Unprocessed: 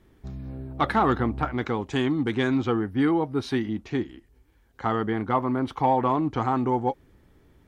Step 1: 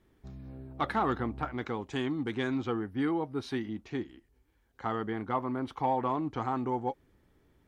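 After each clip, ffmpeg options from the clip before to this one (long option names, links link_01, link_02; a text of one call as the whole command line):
ffmpeg -i in.wav -af "lowshelf=frequency=180:gain=-3,volume=-7dB" out.wav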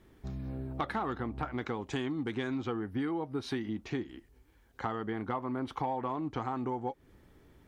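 ffmpeg -i in.wav -af "acompressor=threshold=-38dB:ratio=6,volume=6.5dB" out.wav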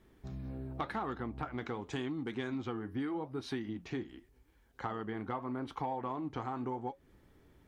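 ffmpeg -i in.wav -af "flanger=delay=4.5:depth=6.5:regen=-79:speed=0.86:shape=sinusoidal,volume=1dB" out.wav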